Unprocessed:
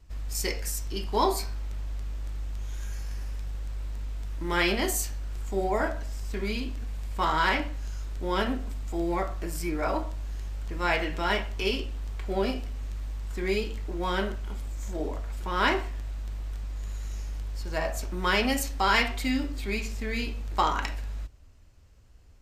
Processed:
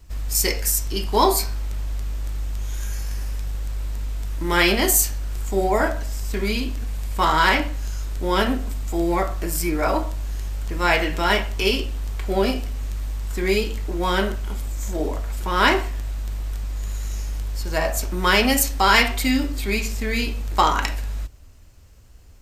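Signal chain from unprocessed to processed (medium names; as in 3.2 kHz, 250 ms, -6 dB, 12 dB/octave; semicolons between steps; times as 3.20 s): treble shelf 8.4 kHz +10.5 dB; trim +7 dB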